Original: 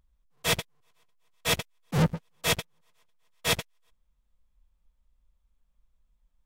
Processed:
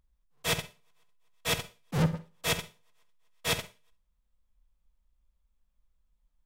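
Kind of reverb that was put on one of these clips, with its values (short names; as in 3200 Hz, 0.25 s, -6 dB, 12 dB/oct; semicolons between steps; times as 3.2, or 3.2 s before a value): Schroeder reverb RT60 0.31 s, DRR 11.5 dB; gain -3.5 dB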